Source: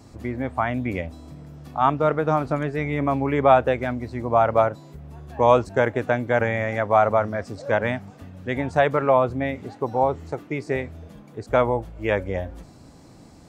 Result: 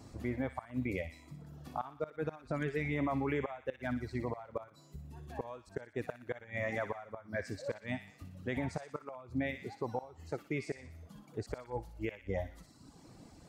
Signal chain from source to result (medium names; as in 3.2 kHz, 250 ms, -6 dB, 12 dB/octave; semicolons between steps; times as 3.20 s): reverb removal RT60 1 s; inverted gate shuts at -11 dBFS, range -25 dB; peak limiter -19.5 dBFS, peak gain reduction 10.5 dB; on a send: feedback echo behind a high-pass 60 ms, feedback 57%, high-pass 1.8 kHz, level -7 dB; on the sum: trim -5 dB